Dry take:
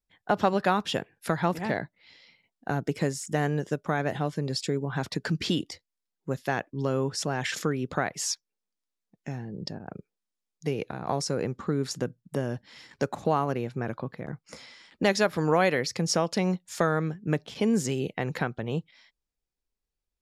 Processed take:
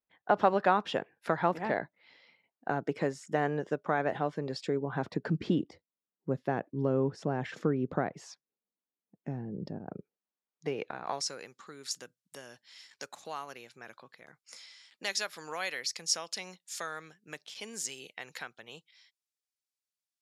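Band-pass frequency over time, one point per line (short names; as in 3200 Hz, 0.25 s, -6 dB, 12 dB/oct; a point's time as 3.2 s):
band-pass, Q 0.51
4.58 s 810 Hz
5.47 s 300 Hz
9.8 s 300 Hz
10.94 s 1500 Hz
11.46 s 7300 Hz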